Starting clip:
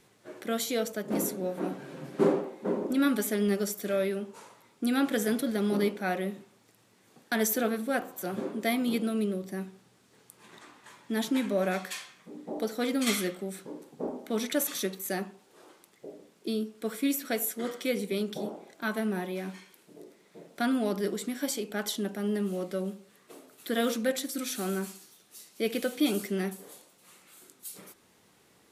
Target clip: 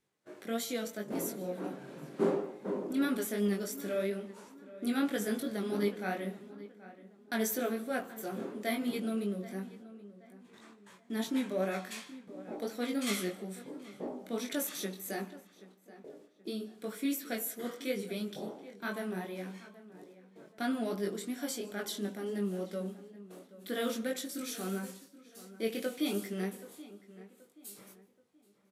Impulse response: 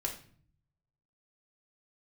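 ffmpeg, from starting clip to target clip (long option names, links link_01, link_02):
-filter_complex "[0:a]agate=range=-14dB:threshold=-52dB:ratio=16:detection=peak,flanger=delay=19.5:depth=2.9:speed=2.9,asplit=2[link_01][link_02];[link_02]adelay=778,lowpass=frequency=2400:poles=1,volume=-16.5dB,asplit=2[link_03][link_04];[link_04]adelay=778,lowpass=frequency=2400:poles=1,volume=0.37,asplit=2[link_05][link_06];[link_06]adelay=778,lowpass=frequency=2400:poles=1,volume=0.37[link_07];[link_01][link_03][link_05][link_07]amix=inputs=4:normalize=0,asplit=2[link_08][link_09];[1:a]atrim=start_sample=2205,adelay=149[link_10];[link_09][link_10]afir=irnorm=-1:irlink=0,volume=-22.5dB[link_11];[link_08][link_11]amix=inputs=2:normalize=0,volume=-2.5dB"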